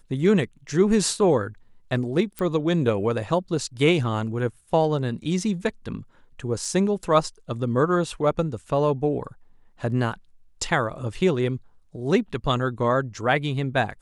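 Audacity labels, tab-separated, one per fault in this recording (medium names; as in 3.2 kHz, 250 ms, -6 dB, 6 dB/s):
2.390000	2.390000	pop
6.650000	6.650000	dropout 2.4 ms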